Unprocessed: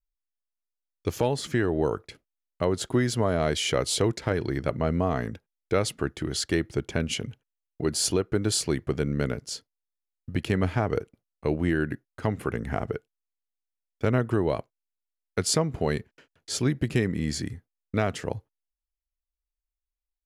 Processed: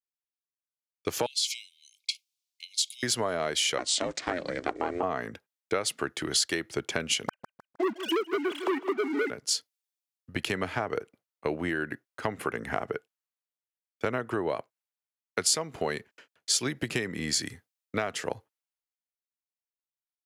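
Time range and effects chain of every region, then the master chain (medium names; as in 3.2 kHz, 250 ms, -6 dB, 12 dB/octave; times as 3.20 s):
1.26–3.03 s: peaking EQ 4.7 kHz +9.5 dB 1.8 oct + compression 5:1, threshold -29 dBFS + brick-wall FIR high-pass 2.1 kHz
3.78–5.03 s: block-companded coder 7-bit + steep low-pass 8.6 kHz 48 dB/octave + ring modulator 180 Hz
7.28–9.30 s: formants replaced by sine waves + waveshaping leveller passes 3 + feedback delay 155 ms, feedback 46%, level -14 dB
whole clip: high-pass 800 Hz 6 dB/octave; compression, threshold -34 dBFS; three bands expanded up and down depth 40%; trim +8.5 dB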